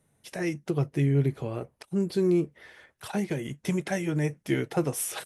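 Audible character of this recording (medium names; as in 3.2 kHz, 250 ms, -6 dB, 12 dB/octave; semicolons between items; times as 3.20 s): noise floor -71 dBFS; spectral tilt -6.0 dB/octave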